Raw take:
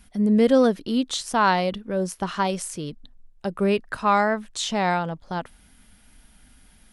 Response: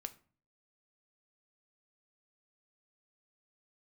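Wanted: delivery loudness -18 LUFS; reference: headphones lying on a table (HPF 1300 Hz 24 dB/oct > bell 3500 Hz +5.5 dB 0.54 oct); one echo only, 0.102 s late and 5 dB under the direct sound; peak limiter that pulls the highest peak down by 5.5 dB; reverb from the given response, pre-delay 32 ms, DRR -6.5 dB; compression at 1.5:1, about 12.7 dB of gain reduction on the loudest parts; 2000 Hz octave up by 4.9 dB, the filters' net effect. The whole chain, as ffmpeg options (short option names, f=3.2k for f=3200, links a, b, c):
-filter_complex "[0:a]equalizer=f=2k:t=o:g=7,acompressor=threshold=-49dB:ratio=1.5,alimiter=limit=-23.5dB:level=0:latency=1,aecho=1:1:102:0.562,asplit=2[a][b];[1:a]atrim=start_sample=2205,adelay=32[c];[b][c]afir=irnorm=-1:irlink=0,volume=9.5dB[d];[a][d]amix=inputs=2:normalize=0,highpass=f=1.3k:w=0.5412,highpass=f=1.3k:w=1.3066,equalizer=f=3.5k:t=o:w=0.54:g=5.5,volume=12.5dB"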